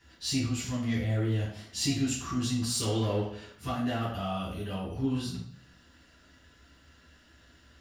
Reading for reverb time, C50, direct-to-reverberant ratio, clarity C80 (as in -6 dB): 0.60 s, 3.5 dB, -6.5 dB, 7.5 dB